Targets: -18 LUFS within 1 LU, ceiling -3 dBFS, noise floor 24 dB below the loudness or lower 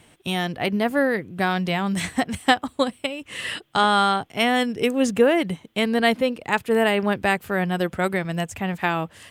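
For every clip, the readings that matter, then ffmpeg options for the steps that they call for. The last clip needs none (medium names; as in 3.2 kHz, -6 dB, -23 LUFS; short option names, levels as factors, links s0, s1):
loudness -22.5 LUFS; peak level -4.0 dBFS; loudness target -18.0 LUFS
-> -af "volume=1.68,alimiter=limit=0.708:level=0:latency=1"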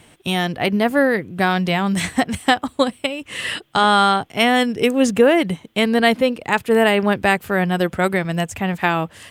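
loudness -18.5 LUFS; peak level -3.0 dBFS; noise floor -52 dBFS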